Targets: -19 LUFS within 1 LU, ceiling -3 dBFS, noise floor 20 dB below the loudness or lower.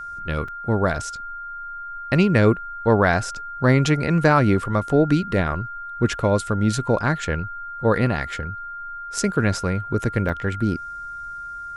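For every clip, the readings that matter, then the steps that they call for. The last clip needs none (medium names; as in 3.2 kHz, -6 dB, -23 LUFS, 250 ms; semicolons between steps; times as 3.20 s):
dropouts 2; longest dropout 4.1 ms; steady tone 1.4 kHz; tone level -31 dBFS; loudness -21.5 LUFS; peak level -2.5 dBFS; loudness target -19.0 LUFS
-> interpolate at 0.48/10.29 s, 4.1 ms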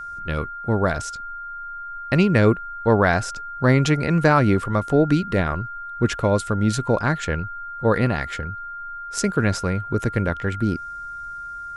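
dropouts 0; steady tone 1.4 kHz; tone level -31 dBFS
-> band-stop 1.4 kHz, Q 30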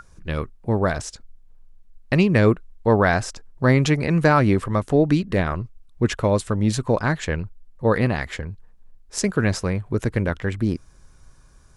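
steady tone not found; loudness -21.5 LUFS; peak level -2.5 dBFS; loudness target -19.0 LUFS
-> trim +2.5 dB; peak limiter -3 dBFS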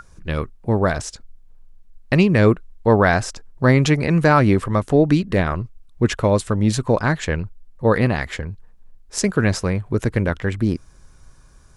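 loudness -19.5 LUFS; peak level -3.0 dBFS; noise floor -49 dBFS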